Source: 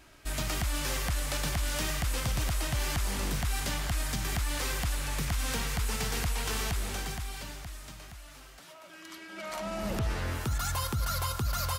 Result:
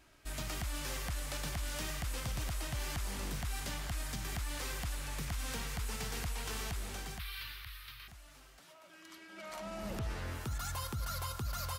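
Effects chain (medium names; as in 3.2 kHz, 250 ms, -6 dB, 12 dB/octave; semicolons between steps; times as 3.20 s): 7.19–8.08 s: FFT filter 120 Hz 0 dB, 170 Hz -23 dB, 390 Hz -9 dB, 690 Hz -19 dB, 1.1 kHz +4 dB, 2.3 kHz +9 dB, 4.1 kHz +10 dB, 7.2 kHz -13 dB, 13 kHz +10 dB; trim -7.5 dB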